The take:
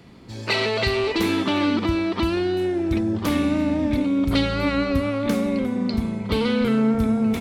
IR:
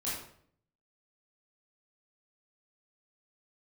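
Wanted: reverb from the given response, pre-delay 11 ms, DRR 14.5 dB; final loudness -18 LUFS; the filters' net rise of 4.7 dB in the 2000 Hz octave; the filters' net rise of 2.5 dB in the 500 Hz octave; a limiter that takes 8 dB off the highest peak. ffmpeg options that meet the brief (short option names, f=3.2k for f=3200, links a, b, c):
-filter_complex "[0:a]equalizer=f=500:t=o:g=3,equalizer=f=2k:t=o:g=5.5,alimiter=limit=-14dB:level=0:latency=1,asplit=2[a][b];[1:a]atrim=start_sample=2205,adelay=11[c];[b][c]afir=irnorm=-1:irlink=0,volume=-18.5dB[d];[a][d]amix=inputs=2:normalize=0,volume=4.5dB"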